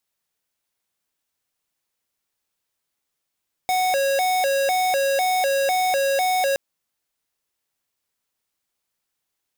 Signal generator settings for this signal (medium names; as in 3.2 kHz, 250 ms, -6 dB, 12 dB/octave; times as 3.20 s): siren hi-lo 549–740 Hz 2 per s square -20.5 dBFS 2.87 s